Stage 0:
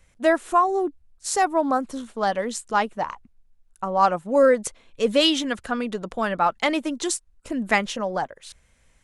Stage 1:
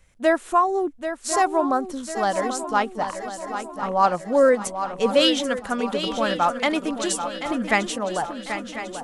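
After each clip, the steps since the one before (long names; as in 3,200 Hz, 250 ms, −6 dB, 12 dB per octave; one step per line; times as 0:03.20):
feedback echo with a long and a short gap by turns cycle 1,048 ms, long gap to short 3 to 1, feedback 47%, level −9.5 dB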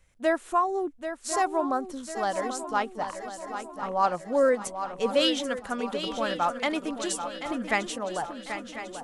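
parametric band 200 Hz −3 dB 0.33 octaves
level −5.5 dB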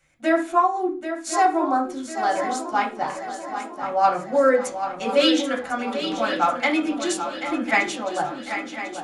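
convolution reverb RT60 0.40 s, pre-delay 3 ms, DRR −3 dB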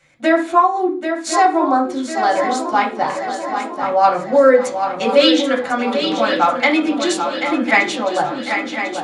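octave-band graphic EQ 125/250/500/1,000/2,000/4,000/8,000 Hz +10/+8/+10/+8/+8/+11/+5 dB
in parallel at −1 dB: downward compressor, threshold −15 dBFS, peak gain reduction 14.5 dB
on the sum: level −8 dB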